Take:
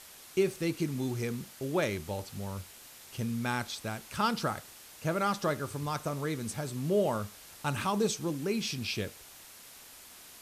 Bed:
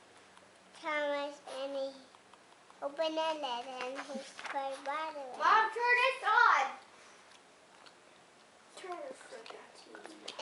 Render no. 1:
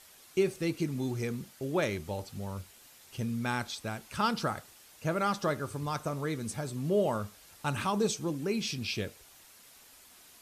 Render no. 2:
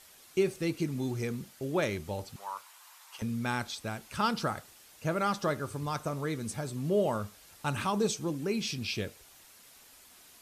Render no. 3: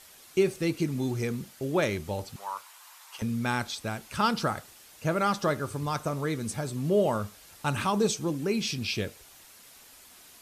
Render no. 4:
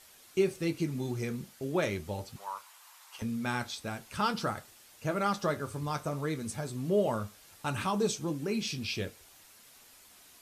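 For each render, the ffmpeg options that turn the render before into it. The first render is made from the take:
-af "afftdn=nr=6:nf=-52"
-filter_complex "[0:a]asettb=1/sr,asplit=3[a][b][c];[a]atrim=end=2.364[d];[b]atrim=start=2.36:end=3.22,asetpts=PTS-STARTPTS,afade=t=in:d=0.004:c=qsin,afade=t=out:st=0.856:d=0.004:c=qsin,highpass=f=1k:t=q:w=4[e];[c]atrim=start=3.216[f];[d][e]acrossfade=d=0.004:c1=hsin:c2=qsin[g];[g][f]acrossfade=d=0.004:c1=qsin:c2=hsin"
-af "volume=3.5dB"
-af "flanger=delay=8:depth=6.1:regen=-55:speed=0.41:shape=triangular"

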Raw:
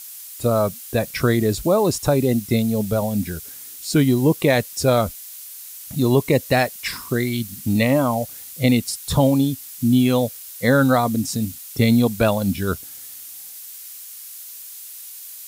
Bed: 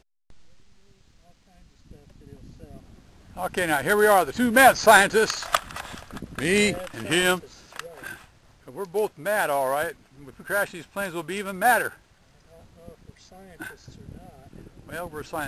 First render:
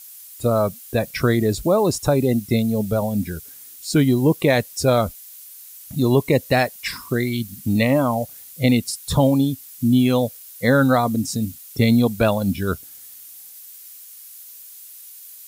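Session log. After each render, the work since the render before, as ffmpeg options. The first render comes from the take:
-af "afftdn=nr=6:nf=-38"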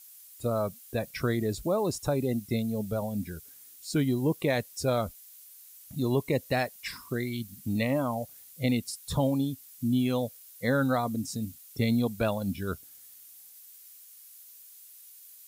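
-af "volume=-10dB"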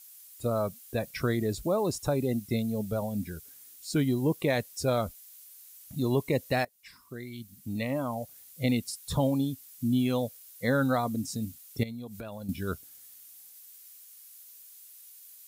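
-filter_complex "[0:a]asettb=1/sr,asplit=3[a][b][c];[a]atrim=end=11.834[d];[b]atrim=start=11.83:end=12.49,asetpts=PTS-STARTPTS,afade=t=in:d=0.004:c=qsin,afade=t=out:st=0.656:d=0.004:c=qsin,acompressor=threshold=-36dB:ratio=12:attack=3.2:release=140:knee=1:detection=peak[e];[c]atrim=start=12.486[f];[d][e]acrossfade=d=0.004:c1=hsin:c2=qsin[g];[g][f]acrossfade=d=0.004:c1=qsin:c2=hsin,asplit=2[h][i];[h]atrim=end=6.65,asetpts=PTS-STARTPTS,afade=t=out:st=6.646:d=0.004:c=hsin:silence=0.1[j];[i]atrim=start=6.65,asetpts=PTS-STARTPTS,afade=t=in:d=2.01:silence=0.1[k];[j][k]concat=n=2:v=0:a=1"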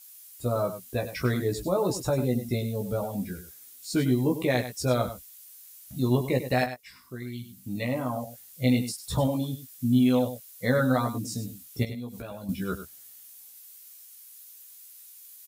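-filter_complex "[0:a]asplit=2[a][b];[b]adelay=16,volume=-3dB[c];[a][c]amix=inputs=2:normalize=0,aecho=1:1:99:0.282"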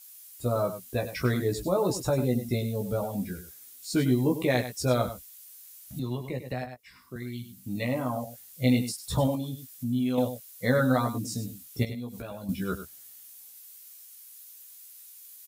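-filter_complex "[0:a]asettb=1/sr,asplit=3[a][b][c];[a]atrim=end=5.994[d];[b]atrim=start=5.99:end=7.16,asetpts=PTS-STARTPTS,afade=t=in:d=0.004:c=qsin,afade=t=out:st=1.166:d=0.004:c=qsin,acrossover=split=120|1300|3600[e][f][g][h];[e]acompressor=threshold=-39dB:ratio=3[i];[f]acompressor=threshold=-35dB:ratio=3[j];[g]acompressor=threshold=-49dB:ratio=3[k];[h]acompressor=threshold=-60dB:ratio=3[l];[i][j][k][l]amix=inputs=4:normalize=0[m];[c]atrim=start=7.156[n];[d][m]acrossfade=d=0.004:c1=hsin:c2=qsin[o];[o][n]acrossfade=d=0.004:c1=qsin:c2=hsin,asettb=1/sr,asplit=3[p][q][r];[p]atrim=end=9.354[s];[q]atrim=start=9.35:end=10.18,asetpts=PTS-STARTPTS,afade=t=in:d=0.004:c=qsin,afade=t=out:st=0.826:d=0.004:c=qsin,acompressor=threshold=-35dB:ratio=1.5:attack=3.2:release=140:knee=1:detection=peak[t];[r]atrim=start=10.176[u];[s][t]acrossfade=d=0.004:c1=hsin:c2=qsin[v];[v][u]acrossfade=d=0.004:c1=qsin:c2=hsin"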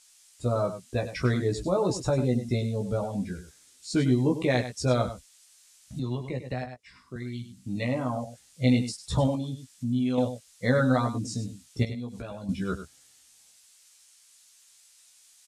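-af "lowpass=f=8.5k:w=0.5412,lowpass=f=8.5k:w=1.3066,lowshelf=f=130:g=3.5"

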